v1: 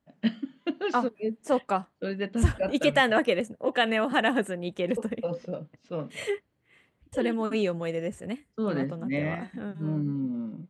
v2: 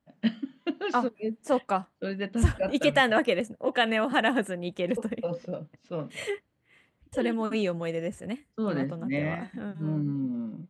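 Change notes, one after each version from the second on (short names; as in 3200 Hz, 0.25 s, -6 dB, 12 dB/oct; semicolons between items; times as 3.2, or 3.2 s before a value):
master: add bell 410 Hz -3 dB 0.27 oct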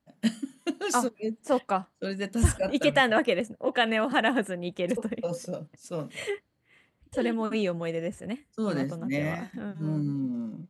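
first voice: remove LPF 3700 Hz 24 dB/oct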